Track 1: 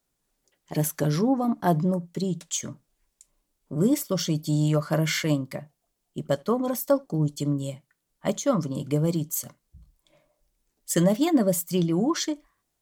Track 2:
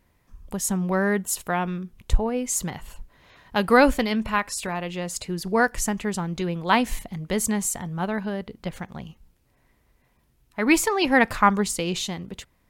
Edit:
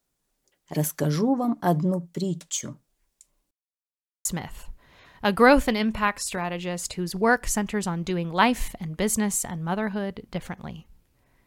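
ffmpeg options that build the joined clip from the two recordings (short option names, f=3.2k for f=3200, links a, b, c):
-filter_complex "[0:a]apad=whole_dur=11.46,atrim=end=11.46,asplit=2[a][b];[a]atrim=end=3.51,asetpts=PTS-STARTPTS,afade=t=out:st=3.506:d=0.004:c=hsin[c];[b]atrim=start=3.51:end=4.25,asetpts=PTS-STARTPTS,volume=0[d];[1:a]atrim=start=2.56:end=9.77,asetpts=PTS-STARTPTS,afade=t=in:d=0.004:c=hsin[e];[c][d][e]concat=n=3:v=0:a=1"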